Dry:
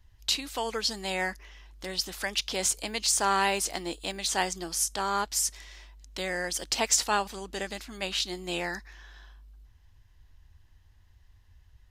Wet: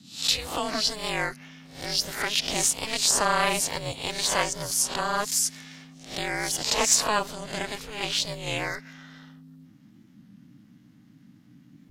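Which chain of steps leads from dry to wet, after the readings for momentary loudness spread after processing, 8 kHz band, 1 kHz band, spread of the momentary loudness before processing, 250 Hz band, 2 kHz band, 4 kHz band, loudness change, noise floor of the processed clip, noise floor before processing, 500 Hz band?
12 LU, +4.0 dB, +2.0 dB, 12 LU, +2.0 dB, +3.0 dB, +4.0 dB, +3.5 dB, -55 dBFS, -59 dBFS, +2.5 dB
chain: reverse spectral sustain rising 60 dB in 0.42 s; ring modulator 210 Hz; warped record 33 1/3 rpm, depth 100 cents; trim +4.5 dB

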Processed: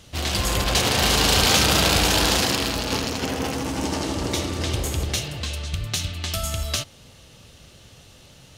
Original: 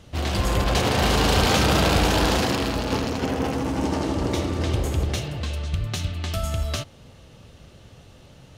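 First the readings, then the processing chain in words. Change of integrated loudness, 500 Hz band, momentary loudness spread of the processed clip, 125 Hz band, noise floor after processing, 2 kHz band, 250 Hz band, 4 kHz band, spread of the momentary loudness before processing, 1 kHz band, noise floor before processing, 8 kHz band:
+1.5 dB, -2.0 dB, 11 LU, -2.5 dB, -49 dBFS, +2.5 dB, -2.5 dB, +6.0 dB, 10 LU, -1.0 dB, -49 dBFS, +8.0 dB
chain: treble shelf 2.3 kHz +11.5 dB; trim -2.5 dB

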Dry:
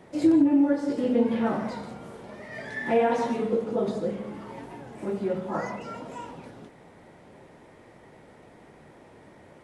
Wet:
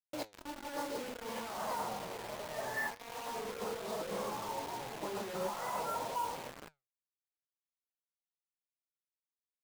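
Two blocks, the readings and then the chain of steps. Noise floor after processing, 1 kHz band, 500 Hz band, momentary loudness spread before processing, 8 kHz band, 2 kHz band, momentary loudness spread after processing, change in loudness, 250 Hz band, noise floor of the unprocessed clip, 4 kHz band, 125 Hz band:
under -85 dBFS, -4.5 dB, -12.5 dB, 20 LU, no reading, -5.0 dB, 7 LU, -13.5 dB, -23.0 dB, -52 dBFS, +1.0 dB, -13.0 dB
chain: level-controlled noise filter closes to 370 Hz, open at -23 dBFS; ten-band graphic EQ 250 Hz -7 dB, 1 kHz +8 dB, 2 kHz -4 dB; compressor with a negative ratio -35 dBFS, ratio -1; overdrive pedal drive 11 dB, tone 5.8 kHz, clips at -18.5 dBFS; bit crusher 6-bit; flange 1.2 Hz, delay 5.9 ms, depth 5.2 ms, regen +80%; trim -4 dB

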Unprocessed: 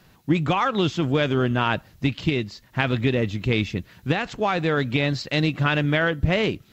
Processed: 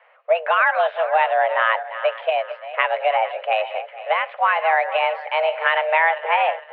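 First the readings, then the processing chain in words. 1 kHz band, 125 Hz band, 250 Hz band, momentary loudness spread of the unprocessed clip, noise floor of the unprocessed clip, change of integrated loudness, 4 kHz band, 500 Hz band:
+9.5 dB, under -40 dB, under -40 dB, 5 LU, -55 dBFS, +3.0 dB, -2.0 dB, +5.0 dB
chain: backward echo that repeats 229 ms, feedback 57%, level -12.5 dB; mistuned SSB +320 Hz 250–2300 Hz; trim +5 dB

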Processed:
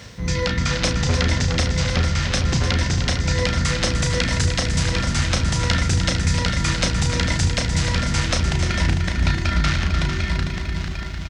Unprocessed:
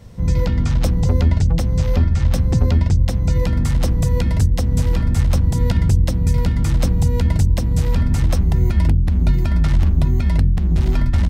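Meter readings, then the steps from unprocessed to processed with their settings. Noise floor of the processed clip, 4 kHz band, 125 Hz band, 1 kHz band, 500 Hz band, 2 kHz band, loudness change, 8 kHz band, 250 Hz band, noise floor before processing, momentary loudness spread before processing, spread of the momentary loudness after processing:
-28 dBFS, +12.0 dB, -5.0 dB, +5.0 dB, +0.5 dB, +11.5 dB, -3.0 dB, +8.5 dB, -2.5 dB, -19 dBFS, 2 LU, 3 LU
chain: fade out at the end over 1.52 s; high-pass 41 Hz; high-order bell 3 kHz +10 dB 2.7 oct; doubling 34 ms -6 dB; multi-head delay 150 ms, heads second and third, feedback 45%, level -8 dB; resampled via 22.05 kHz; reverse; upward compressor, threshold -15 dBFS; reverse; bit crusher 10-bit; bass shelf 230 Hz -8 dB; loudspeaker Doppler distortion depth 0.17 ms

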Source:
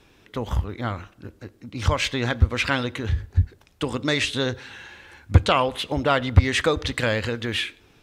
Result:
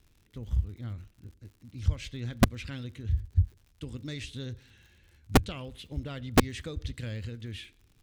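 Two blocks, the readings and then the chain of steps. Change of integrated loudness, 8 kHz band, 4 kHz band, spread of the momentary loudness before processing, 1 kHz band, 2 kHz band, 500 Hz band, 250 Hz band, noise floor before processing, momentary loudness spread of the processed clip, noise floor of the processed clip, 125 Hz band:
-9.0 dB, -6.5 dB, -13.5 dB, 18 LU, -10.5 dB, -13.5 dB, -11.5 dB, -4.5 dB, -57 dBFS, 20 LU, -65 dBFS, -8.0 dB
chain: amplifier tone stack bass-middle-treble 10-0-1; crackle 94 per s -55 dBFS; integer overflow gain 16.5 dB; trim +5 dB

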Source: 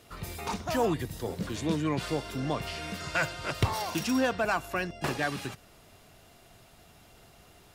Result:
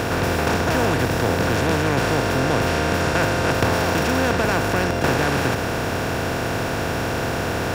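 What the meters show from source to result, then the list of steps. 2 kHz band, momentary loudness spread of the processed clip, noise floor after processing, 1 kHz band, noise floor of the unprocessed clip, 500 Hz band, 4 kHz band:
+12.5 dB, 4 LU, -24 dBFS, +12.0 dB, -57 dBFS, +12.5 dB, +11.0 dB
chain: spectral levelling over time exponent 0.2

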